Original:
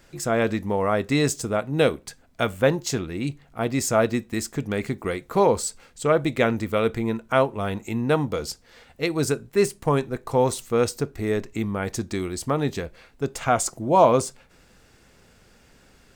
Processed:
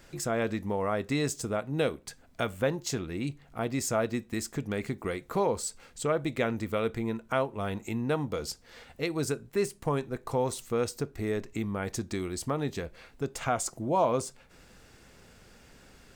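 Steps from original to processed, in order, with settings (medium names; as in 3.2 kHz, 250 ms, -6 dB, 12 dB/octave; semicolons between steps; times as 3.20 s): compression 1.5:1, threshold -39 dBFS, peak gain reduction 10 dB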